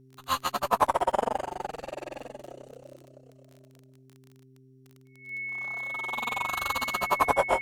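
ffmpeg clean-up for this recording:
ffmpeg -i in.wav -af "adeclick=threshold=4,bandreject=frequency=131:width_type=h:width=4,bandreject=frequency=262:width_type=h:width=4,bandreject=frequency=393:width_type=h:width=4,bandreject=frequency=2200:width=30" out.wav

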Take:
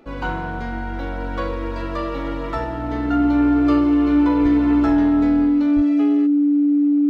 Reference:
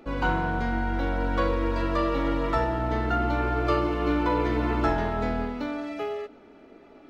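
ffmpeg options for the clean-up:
ffmpeg -i in.wav -filter_complex "[0:a]bandreject=frequency=290:width=30,asplit=3[link_01][link_02][link_03];[link_01]afade=type=out:start_time=4.42:duration=0.02[link_04];[link_02]highpass=frequency=140:width=0.5412,highpass=frequency=140:width=1.3066,afade=type=in:start_time=4.42:duration=0.02,afade=type=out:start_time=4.54:duration=0.02[link_05];[link_03]afade=type=in:start_time=4.54:duration=0.02[link_06];[link_04][link_05][link_06]amix=inputs=3:normalize=0,asplit=3[link_07][link_08][link_09];[link_07]afade=type=out:start_time=5.75:duration=0.02[link_10];[link_08]highpass=frequency=140:width=0.5412,highpass=frequency=140:width=1.3066,afade=type=in:start_time=5.75:duration=0.02,afade=type=out:start_time=5.87:duration=0.02[link_11];[link_09]afade=type=in:start_time=5.87:duration=0.02[link_12];[link_10][link_11][link_12]amix=inputs=3:normalize=0" out.wav

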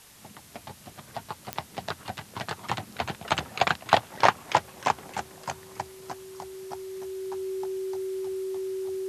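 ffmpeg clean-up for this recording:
ffmpeg -i in.wav -af "adeclick=threshold=4,bandreject=frequency=380:width=30,afwtdn=0.0028" out.wav

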